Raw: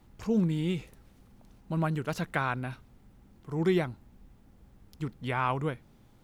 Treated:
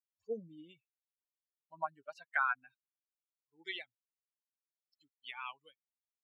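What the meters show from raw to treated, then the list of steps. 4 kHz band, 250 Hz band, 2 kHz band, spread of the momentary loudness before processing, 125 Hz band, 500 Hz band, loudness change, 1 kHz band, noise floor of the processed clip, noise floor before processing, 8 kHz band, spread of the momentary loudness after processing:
−5.0 dB, −26.5 dB, −2.0 dB, 12 LU, below −30 dB, −14.0 dB, −8.5 dB, −6.5 dB, below −85 dBFS, −59 dBFS, below −20 dB, 22 LU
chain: spectral dynamics exaggerated over time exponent 3
band-pass filter sweep 640 Hz → 3,900 Hz, 0:01.09–0:04.39
meter weighting curve A
level +6 dB

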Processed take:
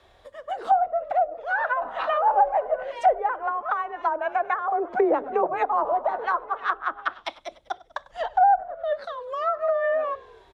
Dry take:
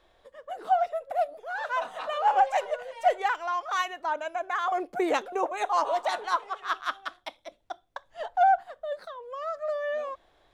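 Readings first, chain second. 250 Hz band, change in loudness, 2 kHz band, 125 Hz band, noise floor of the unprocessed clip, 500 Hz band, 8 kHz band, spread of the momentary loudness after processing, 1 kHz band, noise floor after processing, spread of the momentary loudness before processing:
+3.0 dB, +4.0 dB, +3.0 dB, can't be measured, −65 dBFS, +5.0 dB, below −10 dB, 14 LU, +4.0 dB, −57 dBFS, 16 LU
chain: frequency shifter +26 Hz
echo with shifted repeats 98 ms, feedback 64%, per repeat −46 Hz, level −21 dB
dynamic equaliser 1,500 Hz, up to +5 dB, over −38 dBFS, Q 1.2
treble cut that deepens with the level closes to 650 Hz, closed at −23 dBFS
level +6.5 dB

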